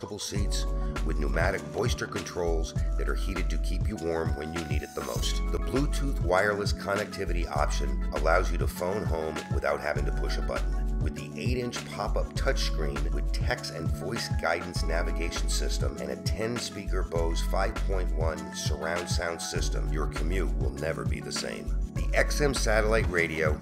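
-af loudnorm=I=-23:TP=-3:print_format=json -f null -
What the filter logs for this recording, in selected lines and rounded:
"input_i" : "-29.7",
"input_tp" : "-8.9",
"input_lra" : "3.1",
"input_thresh" : "-39.7",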